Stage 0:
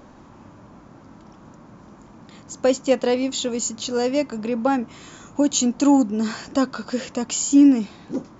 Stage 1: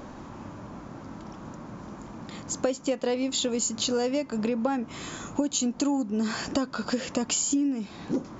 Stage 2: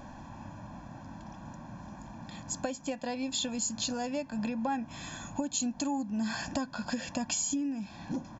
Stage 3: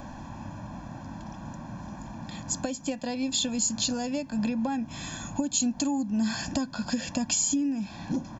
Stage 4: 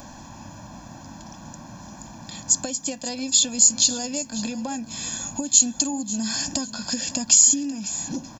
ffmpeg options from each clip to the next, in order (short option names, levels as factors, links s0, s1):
-af "acompressor=threshold=0.0398:ratio=12,volume=1.68"
-af "aecho=1:1:1.2:0.86,volume=0.473"
-filter_complex "[0:a]acrossover=split=390|3000[s0][s1][s2];[s1]acompressor=threshold=0.00224:ratio=1.5[s3];[s0][s3][s2]amix=inputs=3:normalize=0,volume=2"
-af "bass=f=250:g=-3,treble=f=4000:g=14,aecho=1:1:544|1088|1632:0.168|0.0554|0.0183"